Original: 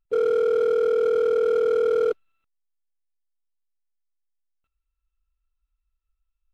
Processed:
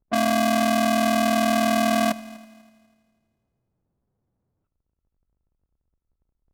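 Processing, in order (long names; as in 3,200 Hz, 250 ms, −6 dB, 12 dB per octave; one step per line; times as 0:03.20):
sub-harmonics by changed cycles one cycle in 2, inverted
low-pass that shuts in the quiet parts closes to 970 Hz, open at −19.5 dBFS
echo machine with several playback heads 82 ms, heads first and third, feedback 48%, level −21.5 dB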